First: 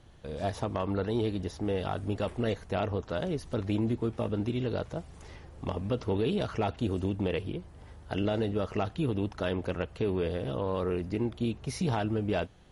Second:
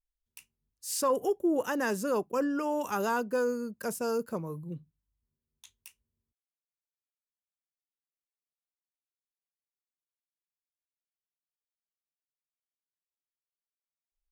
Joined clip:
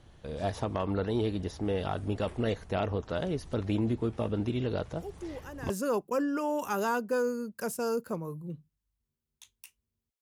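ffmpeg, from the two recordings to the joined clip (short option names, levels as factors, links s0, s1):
-filter_complex "[1:a]asplit=2[s0][s1];[0:a]apad=whole_dur=10.21,atrim=end=10.21,atrim=end=5.702[s2];[s1]atrim=start=1.918:end=6.43[s3];[s0]atrim=start=1.19:end=1.92,asetpts=PTS-STARTPTS,volume=0.211,afade=t=in:d=0.004:c=hsin,afade=t=out:st=0.726:d=0.004:c=hsin,adelay=219177S[s4];[s2][s3]acrossfade=d=0.004:c1=hsin:c2=hsin[s5];[s5][s4]amix=inputs=2:normalize=0"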